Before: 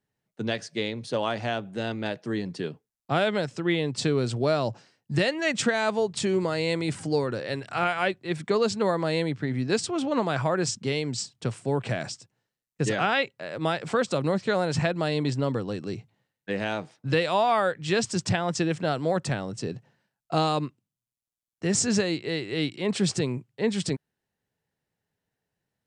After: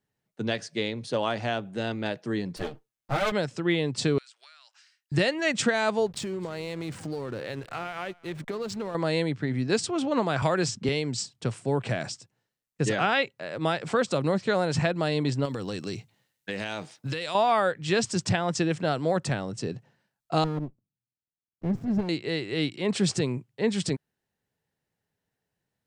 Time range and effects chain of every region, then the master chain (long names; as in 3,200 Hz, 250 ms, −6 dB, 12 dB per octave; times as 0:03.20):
0:02.56–0:03.32: lower of the sound and its delayed copy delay 8.8 ms + comb filter 6.5 ms, depth 39%
0:04.18–0:05.12: high-pass filter 1,500 Hz 24 dB per octave + downward compressor 10 to 1, threshold −49 dBFS
0:06.06–0:08.95: downward compressor, threshold −29 dBFS + slack as between gear wheels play −40 dBFS + single-tap delay 261 ms −23.5 dB
0:10.42–0:10.89: high-shelf EQ 8,000 Hz −7 dB + multiband upward and downward compressor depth 70%
0:15.45–0:17.35: high-shelf EQ 2,400 Hz +11 dB + downward compressor 10 to 1, threshold −27 dBFS + floating-point word with a short mantissa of 6 bits
0:20.44–0:22.09: resonant band-pass 160 Hz, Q 0.63 + windowed peak hold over 33 samples
whole clip: no processing